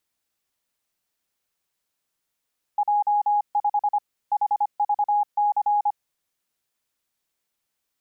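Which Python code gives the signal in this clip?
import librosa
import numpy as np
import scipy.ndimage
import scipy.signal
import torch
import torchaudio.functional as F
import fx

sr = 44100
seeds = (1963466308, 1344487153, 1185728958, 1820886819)

y = fx.morse(sr, text='J5 HVC', wpm=25, hz=828.0, level_db=-17.5)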